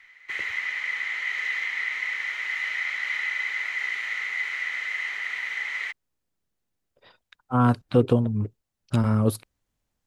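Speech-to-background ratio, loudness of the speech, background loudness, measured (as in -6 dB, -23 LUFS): 3.5 dB, -24.0 LUFS, -27.5 LUFS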